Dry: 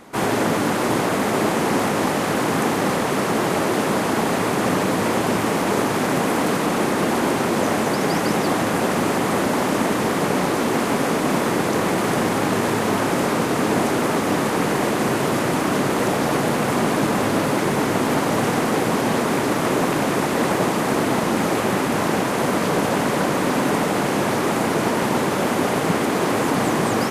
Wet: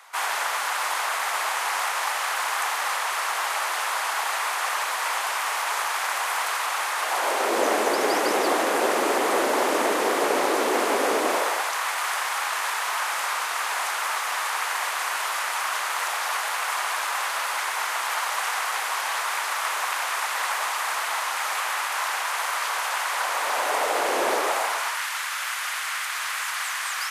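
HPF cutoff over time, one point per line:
HPF 24 dB/oct
6.98 s 890 Hz
7.59 s 360 Hz
11.24 s 360 Hz
11.75 s 940 Hz
23.08 s 940 Hz
24.3 s 390 Hz
25.03 s 1300 Hz

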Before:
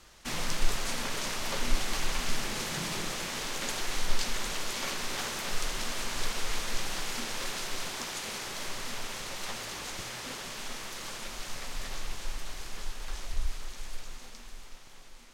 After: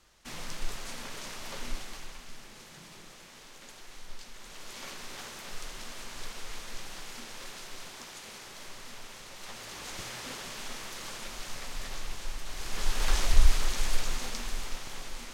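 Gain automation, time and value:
1.67 s -7.5 dB
2.25 s -16 dB
4.34 s -16 dB
4.79 s -8.5 dB
9.32 s -8.5 dB
10.01 s -1 dB
12.44 s -1 dB
13.03 s +11.5 dB

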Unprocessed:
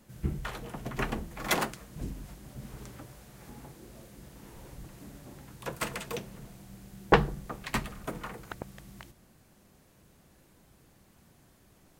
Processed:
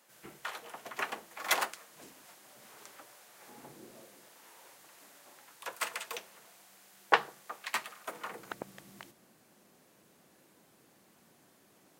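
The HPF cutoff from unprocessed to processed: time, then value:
3.37 s 680 Hz
3.77 s 190 Hz
4.39 s 780 Hz
8.04 s 780 Hz
8.47 s 240 Hz

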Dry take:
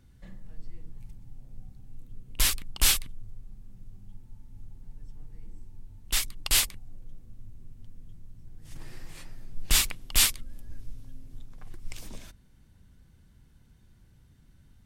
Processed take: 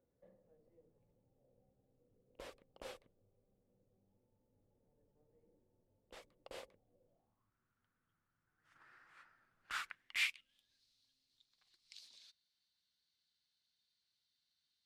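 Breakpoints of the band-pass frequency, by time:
band-pass, Q 5.7
7.03 s 520 Hz
7.55 s 1400 Hz
9.82 s 1400 Hz
10.76 s 4200 Hz

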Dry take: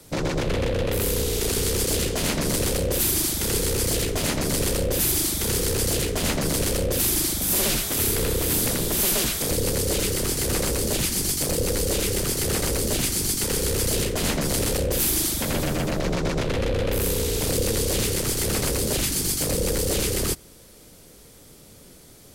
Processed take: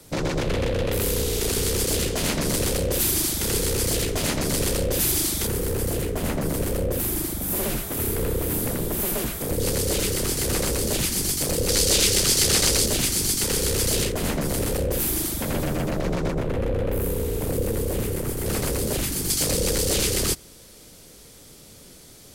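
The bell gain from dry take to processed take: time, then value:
bell 4900 Hz 2.3 oct
0 dB
from 5.47 s -11.5 dB
from 9.6 s 0 dB
from 11.69 s +10.5 dB
from 12.86 s +2.5 dB
from 14.12 s -6.5 dB
from 16.31 s -15 dB
from 18.46 s -5 dB
from 19.3 s +4 dB

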